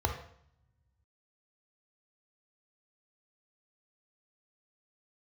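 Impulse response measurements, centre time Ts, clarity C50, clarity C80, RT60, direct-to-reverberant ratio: 19 ms, 7.5 dB, 11.5 dB, 0.65 s, 4.5 dB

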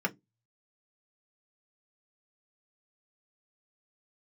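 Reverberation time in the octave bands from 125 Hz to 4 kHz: 0.30, 0.25, 0.20, 0.10, 0.10, 0.15 s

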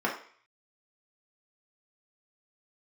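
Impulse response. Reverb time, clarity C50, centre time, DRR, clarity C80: 0.50 s, 7.0 dB, 24 ms, -4.0 dB, 11.5 dB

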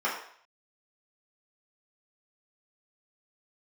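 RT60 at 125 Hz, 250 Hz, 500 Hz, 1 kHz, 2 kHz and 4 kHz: 0.40, 0.45, 0.55, 0.60, 0.60, 0.55 s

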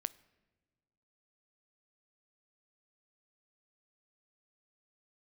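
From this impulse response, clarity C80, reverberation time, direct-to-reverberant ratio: 23.0 dB, not exponential, 17.5 dB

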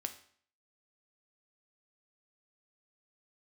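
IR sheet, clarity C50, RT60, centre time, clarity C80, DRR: 12.0 dB, 0.55 s, 8 ms, 16.0 dB, 6.5 dB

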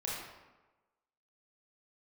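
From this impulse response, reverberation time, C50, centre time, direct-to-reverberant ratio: 1.2 s, -1.0 dB, 77 ms, -5.5 dB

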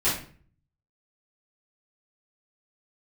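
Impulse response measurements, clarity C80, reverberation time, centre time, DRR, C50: 10.0 dB, 0.45 s, 40 ms, -11.5 dB, 4.0 dB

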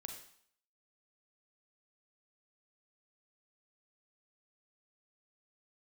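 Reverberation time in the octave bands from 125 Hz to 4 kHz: 0.55, 0.55, 0.60, 0.65, 0.60, 0.60 s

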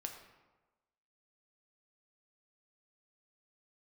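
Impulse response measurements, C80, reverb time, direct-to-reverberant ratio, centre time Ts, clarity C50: 8.5 dB, 1.2 s, 3.0 dB, 27 ms, 6.5 dB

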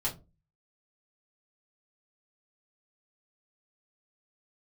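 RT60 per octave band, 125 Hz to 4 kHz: 0.55, 0.40, 0.35, 0.25, 0.20, 0.15 s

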